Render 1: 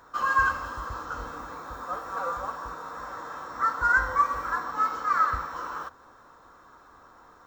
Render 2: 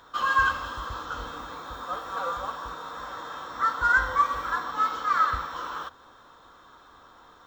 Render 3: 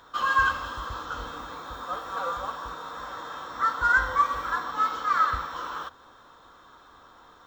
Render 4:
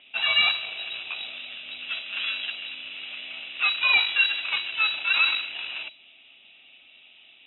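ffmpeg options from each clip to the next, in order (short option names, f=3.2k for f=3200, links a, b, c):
-af "equalizer=f=3.4k:t=o:w=0.49:g=14.5"
-af anull
-af "aeval=exprs='0.299*(cos(1*acos(clip(val(0)/0.299,-1,1)))-cos(1*PI/2))+0.0473*(cos(6*acos(clip(val(0)/0.299,-1,1)))-cos(6*PI/2))':c=same,lowpass=f=3.3k:t=q:w=0.5098,lowpass=f=3.3k:t=q:w=0.6013,lowpass=f=3.3k:t=q:w=0.9,lowpass=f=3.3k:t=q:w=2.563,afreqshift=-3900"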